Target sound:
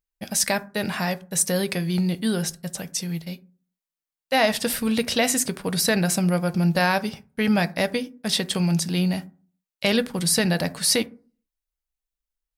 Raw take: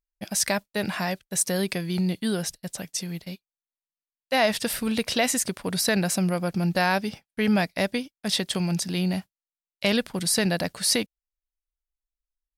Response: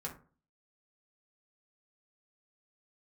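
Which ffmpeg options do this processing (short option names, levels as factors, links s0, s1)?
-filter_complex "[0:a]asplit=2[s0][s1];[s1]highshelf=f=8500:g=9.5[s2];[1:a]atrim=start_sample=2205[s3];[s2][s3]afir=irnorm=-1:irlink=0,volume=0.398[s4];[s0][s4]amix=inputs=2:normalize=0"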